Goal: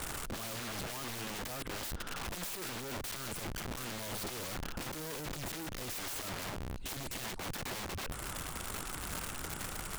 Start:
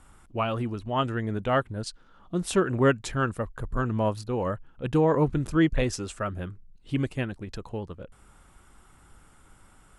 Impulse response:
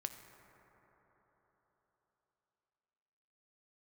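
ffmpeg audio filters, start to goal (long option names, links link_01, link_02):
-af "aeval=exprs='(tanh(56.2*val(0)+0.4)-tanh(0.4))/56.2':channel_layout=same,acompressor=threshold=-42dB:ratio=6,aeval=exprs='(mod(355*val(0)+1,2)-1)/355':channel_layout=same,volume=16dB"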